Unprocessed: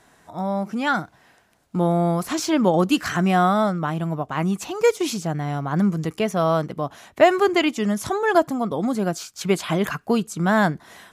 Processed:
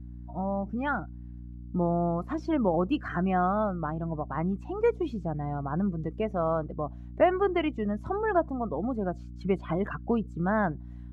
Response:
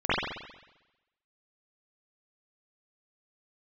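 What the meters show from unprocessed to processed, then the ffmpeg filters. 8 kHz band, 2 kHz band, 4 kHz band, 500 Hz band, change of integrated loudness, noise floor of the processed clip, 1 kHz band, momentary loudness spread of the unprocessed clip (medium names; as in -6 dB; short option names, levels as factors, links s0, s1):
under -30 dB, -10.5 dB, -18.0 dB, -7.0 dB, -7.5 dB, -42 dBFS, -7.5 dB, 8 LU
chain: -filter_complex "[0:a]lowpass=f=1400:p=1,afftdn=nr=18:nf=-33,adynamicequalizer=threshold=0.0224:dfrequency=170:dqfactor=0.81:tfrequency=170:tqfactor=0.81:attack=5:release=100:ratio=0.375:range=2:mode=cutabove:tftype=bell,asplit=2[s0][s1];[s1]acompressor=threshold=0.0355:ratio=8,volume=0.75[s2];[s0][s2]amix=inputs=2:normalize=0,aeval=exprs='val(0)+0.0224*(sin(2*PI*60*n/s)+sin(2*PI*2*60*n/s)/2+sin(2*PI*3*60*n/s)/3+sin(2*PI*4*60*n/s)/4+sin(2*PI*5*60*n/s)/5)':c=same,volume=0.422"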